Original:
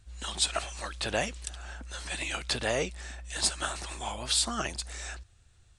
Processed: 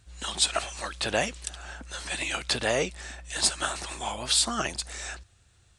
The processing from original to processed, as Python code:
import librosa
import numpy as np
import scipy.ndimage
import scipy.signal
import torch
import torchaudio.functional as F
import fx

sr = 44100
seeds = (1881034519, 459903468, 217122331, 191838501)

y = fx.highpass(x, sr, hz=93.0, slope=6)
y = y * 10.0 ** (3.5 / 20.0)